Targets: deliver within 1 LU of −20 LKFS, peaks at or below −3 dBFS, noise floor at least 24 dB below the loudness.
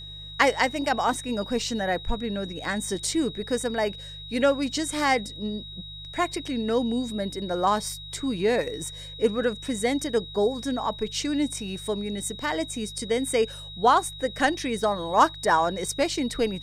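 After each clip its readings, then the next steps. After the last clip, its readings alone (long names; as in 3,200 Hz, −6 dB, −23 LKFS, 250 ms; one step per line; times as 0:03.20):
mains hum 50 Hz; hum harmonics up to 150 Hz; level of the hum −42 dBFS; interfering tone 3,800 Hz; level of the tone −39 dBFS; integrated loudness −26.0 LKFS; sample peak −5.5 dBFS; target loudness −20.0 LKFS
→ hum removal 50 Hz, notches 3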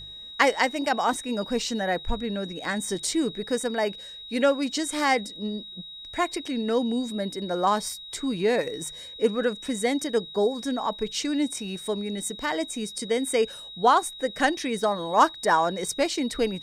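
mains hum none found; interfering tone 3,800 Hz; level of the tone −39 dBFS
→ notch filter 3,800 Hz, Q 30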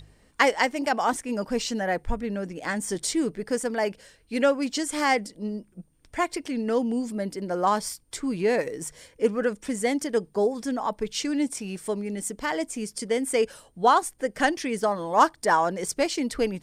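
interfering tone none found; integrated loudness −26.5 LKFS; sample peak −5.5 dBFS; target loudness −20.0 LKFS
→ level +6.5 dB
brickwall limiter −3 dBFS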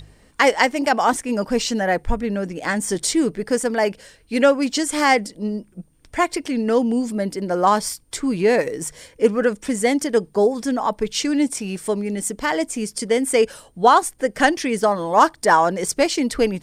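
integrated loudness −20.0 LKFS; sample peak −3.0 dBFS; background noise floor −55 dBFS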